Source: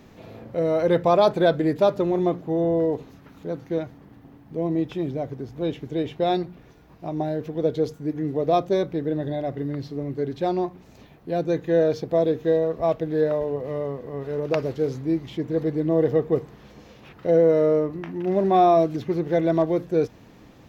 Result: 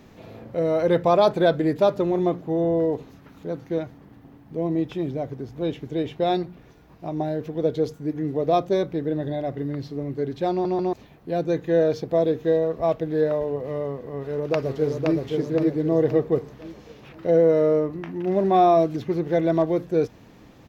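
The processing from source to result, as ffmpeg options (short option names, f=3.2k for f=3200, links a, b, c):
-filter_complex "[0:a]asplit=2[a][b];[b]afade=t=in:st=14.13:d=0.01,afade=t=out:st=15.17:d=0.01,aecho=0:1:520|1040|1560|2080|2600|3120:0.707946|0.318576|0.143359|0.0645116|0.0290302|0.0130636[c];[a][c]amix=inputs=2:normalize=0,asplit=4[d][e][f][g];[d]atrim=end=10.652[h];[e]atrim=start=10.508:end=10.652[i];[f]atrim=start=10.508:end=10.652[j];[g]atrim=start=10.928[k];[h][i]acrossfade=d=0.004:c1=hsin:c2=hsin[l];[l][j]acrossfade=d=0.004:c1=hsin:c2=hsin[m];[m][k]acrossfade=d=0.004:c1=hsin:c2=hsin"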